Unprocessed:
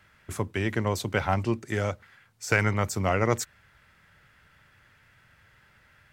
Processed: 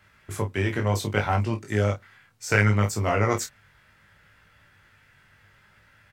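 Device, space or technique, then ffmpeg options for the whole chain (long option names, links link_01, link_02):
double-tracked vocal: -filter_complex "[0:a]asplit=2[link_01][link_02];[link_02]adelay=29,volume=-8dB[link_03];[link_01][link_03]amix=inputs=2:normalize=0,flanger=delay=18.5:depth=2.5:speed=0.67,volume=4dB"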